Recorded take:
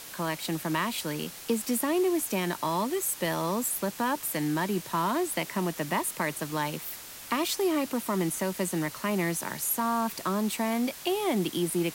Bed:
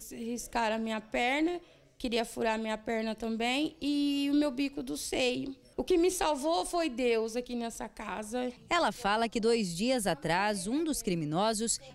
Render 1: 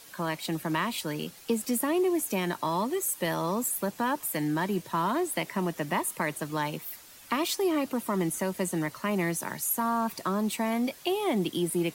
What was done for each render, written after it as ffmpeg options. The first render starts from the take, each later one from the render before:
-af "afftdn=nr=9:nf=-44"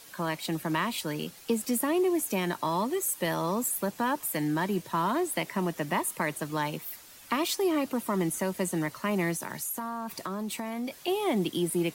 -filter_complex "[0:a]asettb=1/sr,asplit=3[a][b][c];[a]atrim=end=9.344[d];[b]atrim=start=9.34:end=11.08,asetpts=PTS-STARTPTS,afade=t=in:d=0.004:c=qsin,afade=t=out:st=1.736:d=0.004:c=qsin,acompressor=threshold=-30dB:ratio=6:attack=3.2:release=140:knee=1:detection=peak[e];[c]atrim=start=11.076[f];[d][e]acrossfade=d=0.004:c1=hsin:c2=qsin[g];[g][f]acrossfade=d=0.004:c1=qsin:c2=hsin"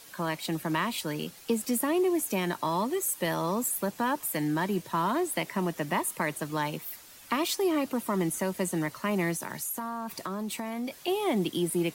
-af anull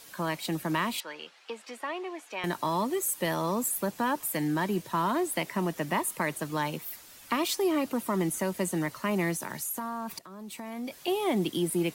-filter_complex "[0:a]asettb=1/sr,asplit=3[a][b][c];[a]atrim=end=1.004[d];[b]atrim=start=1:end=2.44,asetpts=PTS-STARTPTS,afade=t=in:d=0.004:c=qsin,afade=t=out:st=1.436:d=0.004:c=qsin,highpass=760,lowpass=3.3k[e];[c]atrim=start=2.436[f];[d][e]acrossfade=d=0.004:c1=hsin:c2=qsin[g];[g][f]acrossfade=d=0.004:c1=qsin:c2=hsin,asplit=2[h][i];[h]atrim=end=10.19,asetpts=PTS-STARTPTS,afade=t=out:st=10.186:d=0.004:c=hsin:silence=0.141254[j];[i]atrim=start=10.19,asetpts=PTS-STARTPTS,afade=t=in:d=0.89:silence=0.141254[k];[j][k]concat=n=2:v=0:a=1"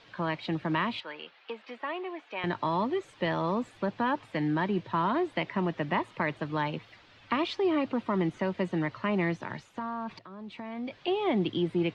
-af "lowpass=f=3.7k:w=0.5412,lowpass=f=3.7k:w=1.3066,equalizer=f=110:w=5.5:g=14"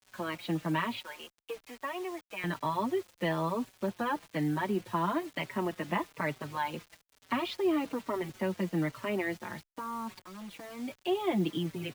-filter_complex "[0:a]acrusher=bits=7:mix=0:aa=0.000001,asplit=2[a][b];[b]adelay=4.8,afreqshift=-1.1[c];[a][c]amix=inputs=2:normalize=1"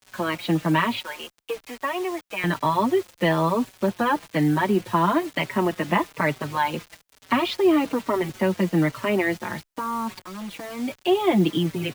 -af "volume=10dB"

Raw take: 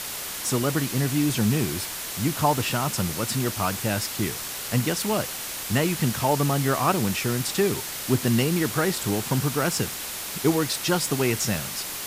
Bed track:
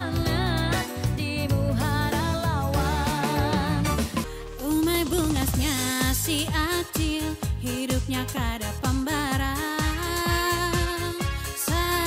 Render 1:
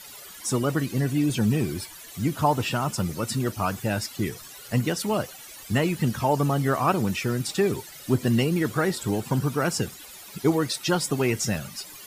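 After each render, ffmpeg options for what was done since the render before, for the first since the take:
-af "afftdn=nr=16:nf=-33"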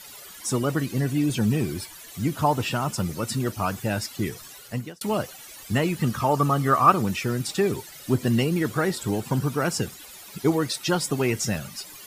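-filter_complex "[0:a]asettb=1/sr,asplit=3[a][b][c];[a]atrim=end=6.014[d];[b]atrim=start=6.01:end=7.02,asetpts=PTS-STARTPTS,afade=t=in:d=0.004:c=qsin,afade=t=out:st=1.006:d=0.004:c=qsin,equalizer=f=1.2k:t=o:w=0.21:g=13[e];[c]atrim=start=7.016[f];[d][e]acrossfade=d=0.004:c1=hsin:c2=qsin[g];[g][f]acrossfade=d=0.004:c1=qsin:c2=hsin,asplit=2[h][i];[h]atrim=end=5.01,asetpts=PTS-STARTPTS,afade=t=out:st=4.52:d=0.49[j];[i]atrim=start=5.01,asetpts=PTS-STARTPTS,afade=t=in:d=0.004:c=hsin[k];[j][k]concat=n=2:v=0:a=1"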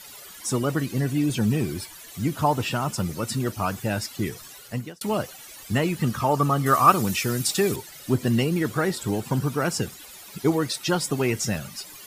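-filter_complex "[0:a]asettb=1/sr,asplit=3[a][b][c];[a]atrim=end=6.664[d];[b]atrim=start=6.66:end=7.76,asetpts=PTS-STARTPTS,afade=t=in:d=0.004:c=qsin,afade=t=out:st=1.096:d=0.004:c=qsin,highshelf=f=4k:g=10[e];[c]atrim=start=7.756[f];[d][e]acrossfade=d=0.004:c1=hsin:c2=qsin[g];[g][f]acrossfade=d=0.004:c1=qsin:c2=hsin"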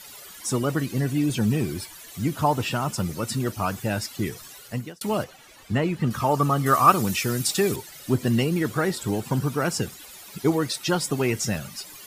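-filter_complex "[0:a]asettb=1/sr,asplit=3[a][b][c];[a]atrim=end=5.244[d];[b]atrim=start=5.24:end=6.11,asetpts=PTS-STARTPTS,afade=t=in:d=0.004:c=qsin,afade=t=out:st=0.866:d=0.004:c=qsin,lowpass=f=2.4k:p=1[e];[c]atrim=start=6.106[f];[d][e]acrossfade=d=0.004:c1=hsin:c2=qsin[g];[g][f]acrossfade=d=0.004:c1=qsin:c2=hsin"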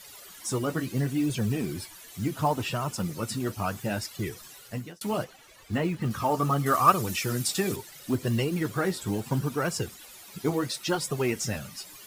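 -af "flanger=delay=1.7:depth=9.5:regen=-39:speed=0.72:shape=sinusoidal,acrusher=bits=7:mode=log:mix=0:aa=0.000001"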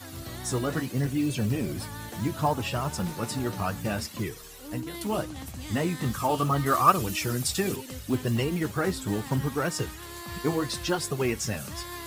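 -filter_complex "[1:a]volume=-15dB[a];[0:a][a]amix=inputs=2:normalize=0"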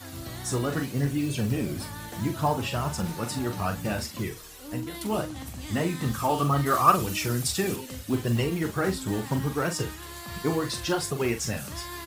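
-filter_complex "[0:a]asplit=2[a][b];[b]adelay=42,volume=-8.5dB[c];[a][c]amix=inputs=2:normalize=0"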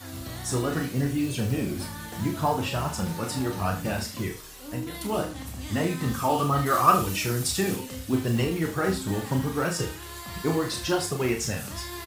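-filter_complex "[0:a]asplit=2[a][b];[b]adelay=31,volume=-7dB[c];[a][c]amix=inputs=2:normalize=0,aecho=1:1:77:0.211"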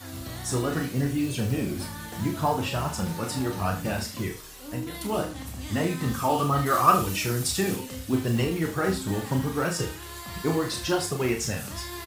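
-af anull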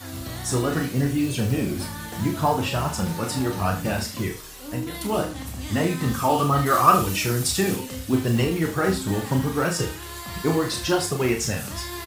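-af "volume=3.5dB,alimiter=limit=-3dB:level=0:latency=1"

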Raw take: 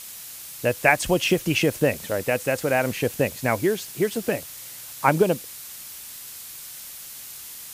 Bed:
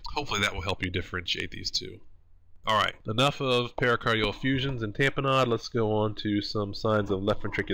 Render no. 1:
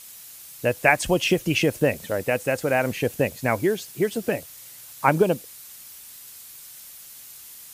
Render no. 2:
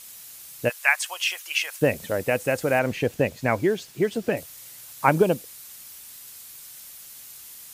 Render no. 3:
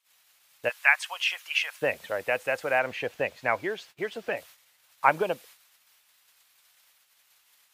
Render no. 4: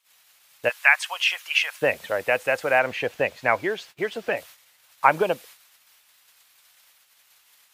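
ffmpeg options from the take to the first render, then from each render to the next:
-af "afftdn=nr=6:nf=-40"
-filter_complex "[0:a]asplit=3[a][b][c];[a]afade=t=out:st=0.68:d=0.02[d];[b]highpass=f=1k:w=0.5412,highpass=f=1k:w=1.3066,afade=t=in:st=0.68:d=0.02,afade=t=out:st=1.81:d=0.02[e];[c]afade=t=in:st=1.81:d=0.02[f];[d][e][f]amix=inputs=3:normalize=0,asettb=1/sr,asplit=3[g][h][i];[g]atrim=end=2.794[j];[h]atrim=start=2.79:end=4.37,asetpts=PTS-STARTPTS,afade=t=in:d=0.004:c=qsin,afade=t=out:st=1.576:d=0.004:c=qsin,equalizer=f=12k:t=o:w=1.2:g=-9[k];[i]atrim=start=4.366[l];[j][k]acrossfade=d=0.004:c1=hsin:c2=qsin[m];[m][l]acrossfade=d=0.004:c1=qsin:c2=hsin"
-filter_complex "[0:a]agate=range=-23dB:threshold=-41dB:ratio=16:detection=peak,acrossover=split=560 4000:gain=0.141 1 0.224[a][b][c];[a][b][c]amix=inputs=3:normalize=0"
-af "volume=5dB,alimiter=limit=-2dB:level=0:latency=1"

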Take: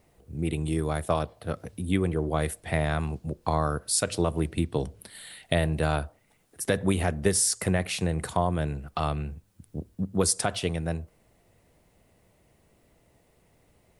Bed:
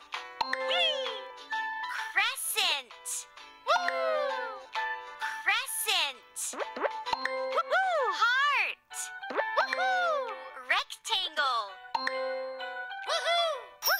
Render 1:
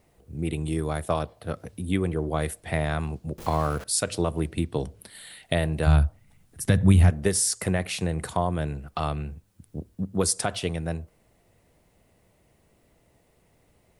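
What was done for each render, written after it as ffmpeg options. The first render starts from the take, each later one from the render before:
-filter_complex "[0:a]asettb=1/sr,asplit=3[a][b][c];[a]atrim=end=3.384[d];[b]atrim=start=3.38:end=3.84,asetpts=PTS-STARTPTS,afade=t=in:d=0.004:c=qsin,afade=t=out:st=0.456:d=0.004:c=qsin,aeval=exprs='val(0)+0.5*0.0178*sgn(val(0))':c=same[e];[c]atrim=start=3.836[f];[d][e]acrossfade=d=0.004:c1=hsin:c2=qsin[g];[g][f]acrossfade=d=0.004:c1=qsin:c2=hsin,asplit=3[h][i][j];[h]afade=t=out:st=5.86:d=0.02[k];[i]asubboost=boost=6.5:cutoff=160,afade=t=in:st=5.86:d=0.02,afade=t=out:st=7.09:d=0.02[l];[j]afade=t=in:st=7.09:d=0.02[m];[k][l][m]amix=inputs=3:normalize=0"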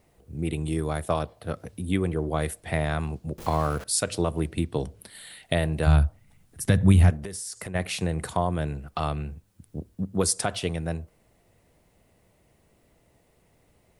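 -filter_complex "[0:a]asplit=3[a][b][c];[a]afade=t=out:st=7.16:d=0.02[d];[b]acompressor=threshold=-32dB:ratio=8:attack=3.2:release=140:knee=1:detection=peak,afade=t=in:st=7.16:d=0.02,afade=t=out:st=7.74:d=0.02[e];[c]afade=t=in:st=7.74:d=0.02[f];[d][e][f]amix=inputs=3:normalize=0"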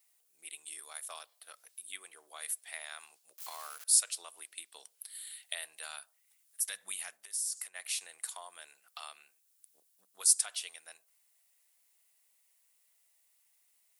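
-af "highpass=790,aderivative"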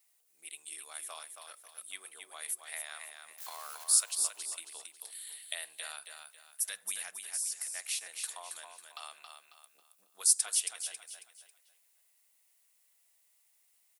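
-af "aecho=1:1:273|546|819|1092:0.501|0.175|0.0614|0.0215"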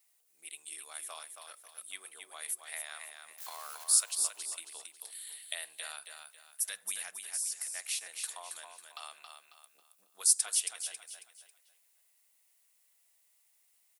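-af anull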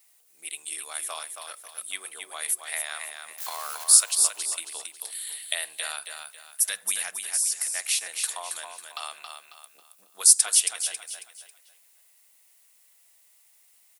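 -af "volume=10dB,alimiter=limit=-2dB:level=0:latency=1"

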